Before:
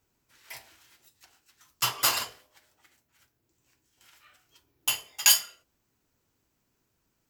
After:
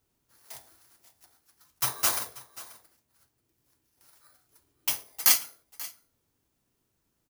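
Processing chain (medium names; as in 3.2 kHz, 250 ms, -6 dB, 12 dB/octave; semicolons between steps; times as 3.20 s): bit-reversed sample order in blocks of 16 samples; delay 536 ms -18.5 dB; trim -1 dB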